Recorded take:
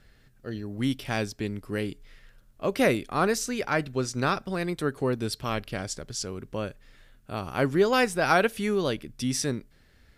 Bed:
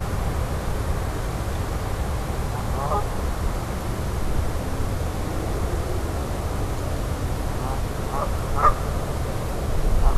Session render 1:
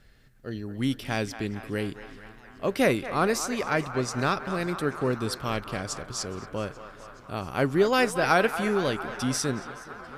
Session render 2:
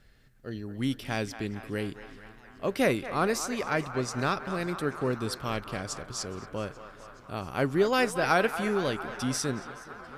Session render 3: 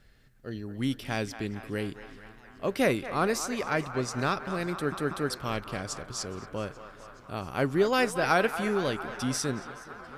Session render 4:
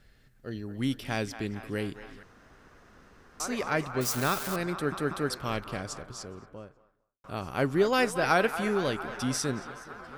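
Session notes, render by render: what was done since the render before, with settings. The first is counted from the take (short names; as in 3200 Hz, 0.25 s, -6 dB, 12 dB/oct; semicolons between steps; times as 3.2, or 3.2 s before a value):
on a send: narrowing echo 0.228 s, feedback 84%, band-pass 1200 Hz, level -10 dB; on the sum: warbling echo 0.422 s, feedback 76%, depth 117 cents, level -22.5 dB
gain -2.5 dB
4.73 stutter in place 0.19 s, 3 plays
2.23–3.4 room tone; 4.01–4.56 switching spikes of -24.5 dBFS; 5.55–7.24 studio fade out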